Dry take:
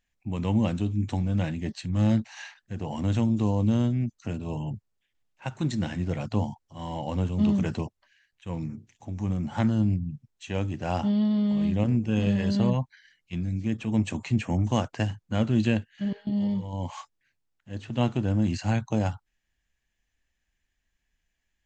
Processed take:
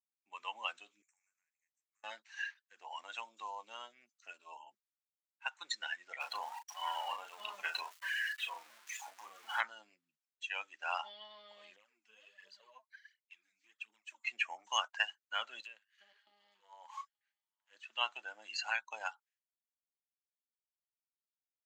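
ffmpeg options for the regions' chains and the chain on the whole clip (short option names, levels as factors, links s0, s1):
-filter_complex "[0:a]asettb=1/sr,asplit=3[s0][s1][s2];[s0]atrim=end=1.024[s3];[s1]atrim=start=1.02:end=2.04,asetpts=PTS-STARTPTS,afade=t=in:d=0.004:c=qsin,afade=t=out:st=1.016:d=0.004:c=qsin,aderivative,acompressor=threshold=0.00141:ratio=8:attack=3.2:release=140:knee=1:detection=peak,asuperstop=centerf=3800:order=12:qfactor=1.2[s4];[s2]atrim=start=2.036[s5];[s3][s4]acrossfade=d=0.004:c1=hsin:c2=qsin[s6];[s6][s5]acrossfade=d=0.004:c1=qsin:c2=hsin,asettb=1/sr,asplit=3[s7][s8][s9];[s7]atrim=end=6.204[s10];[s8]atrim=start=6.2:end=9.61,asetpts=PTS-STARTPTS,afade=t=in:d=0.004:c=qsin,afade=t=out:st=3.406:d=0.004:c=qsin,aeval=exprs='val(0)+0.5*0.02*sgn(val(0))':c=same,asplit=2[s11][s12];[s12]adelay=36,volume=0.596[s13];[s11][s13]amix=inputs=2:normalize=0,atrim=end_sample=150381[s14];[s9]atrim=start=9.606[s15];[s10][s14]acrossfade=d=0.004:c1=hsin:c2=qsin[s16];[s16][s15]acrossfade=d=0.004:c1=qsin:c2=hsin,asettb=1/sr,asplit=3[s17][s18][s19];[s17]atrim=end=11.764[s20];[s18]atrim=start=11.76:end=14.27,asetpts=PTS-STARTPTS,afade=t=in:d=0.004:c=qsin,afade=t=out:st=2.506:d=0.004:c=qsin,acompressor=threshold=0.00447:ratio=2:attack=3.2:release=140:knee=1:detection=peak,aphaser=in_gain=1:out_gain=1:delay=4.8:decay=0.62:speed=1.4:type=triangular[s21];[s19]atrim=start=14.266[s22];[s20][s21]acrossfade=d=0.004:c1=hsin:c2=qsin[s23];[s23][s22]acrossfade=d=0.004:c1=qsin:c2=hsin,asettb=1/sr,asplit=3[s24][s25][s26];[s24]atrim=end=15.604[s27];[s25]atrim=start=15.6:end=17.75,asetpts=PTS-STARTPTS,afade=t=in:d=0.004:c=qsin,afade=t=out:st=2.146:d=0.004:c=qsin,aeval=exprs='if(lt(val(0),0),0.447*val(0),val(0))':c=same,acompressor=threshold=0.0316:ratio=16:attack=3.2:release=140:knee=1:detection=peak,aecho=1:1:880:0.0708,atrim=end_sample=94815[s28];[s26]atrim=start=17.746[s29];[s27][s28]acrossfade=d=0.004:c1=hsin:c2=qsin[s30];[s30][s29]acrossfade=d=0.004:c1=qsin:c2=hsin,agate=range=0.0224:threshold=0.002:ratio=3:detection=peak,afftdn=nr=18:nf=-36,highpass=f=1200:w=0.5412,highpass=f=1200:w=1.3066,volume=2"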